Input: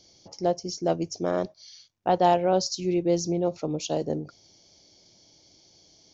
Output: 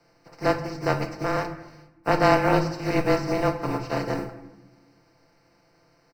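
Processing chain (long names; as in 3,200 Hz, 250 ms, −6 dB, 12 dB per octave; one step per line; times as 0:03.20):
compressing power law on the bin magnitudes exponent 0.27
comb filter 5.7 ms, depth 94%
frequency shifter −26 Hz
moving average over 13 samples
convolution reverb RT60 1.1 s, pre-delay 4 ms, DRR 6 dB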